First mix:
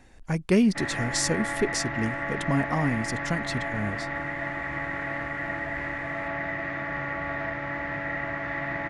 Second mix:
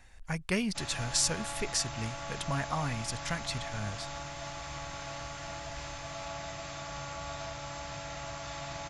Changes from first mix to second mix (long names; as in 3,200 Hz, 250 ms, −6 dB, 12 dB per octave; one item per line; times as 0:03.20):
background: remove low-pass with resonance 1,900 Hz, resonance Q 12
master: add parametric band 300 Hz −15 dB 1.9 octaves